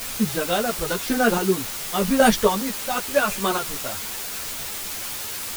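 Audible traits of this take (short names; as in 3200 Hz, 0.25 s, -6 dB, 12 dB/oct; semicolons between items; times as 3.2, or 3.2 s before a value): chopped level 0.91 Hz, depth 60%, duty 25%; a quantiser's noise floor 6-bit, dither triangular; a shimmering, thickened sound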